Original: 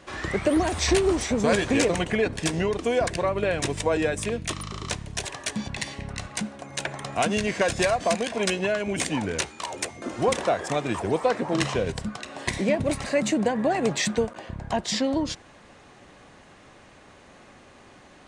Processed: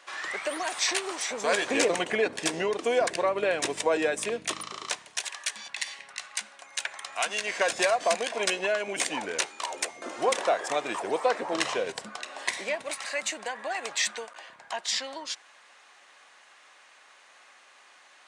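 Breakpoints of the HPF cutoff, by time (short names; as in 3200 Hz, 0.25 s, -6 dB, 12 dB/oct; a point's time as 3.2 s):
1.22 s 910 Hz
1.84 s 370 Hz
4.6 s 370 Hz
5.31 s 1300 Hz
7.08 s 1300 Hz
7.75 s 490 Hz
12.04 s 490 Hz
12.98 s 1100 Hz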